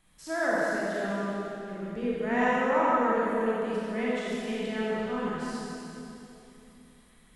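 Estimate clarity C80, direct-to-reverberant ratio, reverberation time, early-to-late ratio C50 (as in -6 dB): -3.0 dB, -7.5 dB, 3.0 s, -5.5 dB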